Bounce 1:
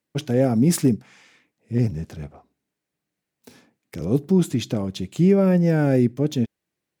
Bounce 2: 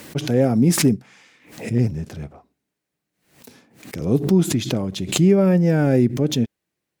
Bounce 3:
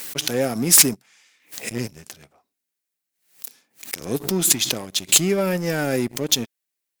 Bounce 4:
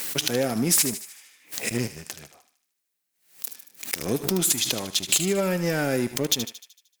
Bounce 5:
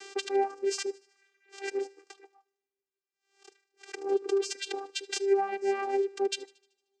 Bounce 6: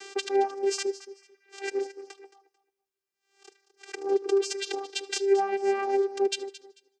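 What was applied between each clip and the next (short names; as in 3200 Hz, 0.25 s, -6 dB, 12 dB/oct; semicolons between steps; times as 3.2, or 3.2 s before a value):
backwards sustainer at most 110 dB/s; gain +1.5 dB
tilt +4 dB/oct; sample leveller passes 2; gain -7 dB
compressor 3:1, threshold -24 dBFS, peak gain reduction 12 dB; thinning echo 76 ms, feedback 55%, high-pass 1100 Hz, level -10 dB; gain +2.5 dB
vocoder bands 8, saw 394 Hz; reverb removal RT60 0.7 s; two-slope reverb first 0.42 s, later 2.8 s, from -28 dB, DRR 20 dB; gain -2.5 dB
feedback echo 0.221 s, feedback 23%, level -15.5 dB; gain +2.5 dB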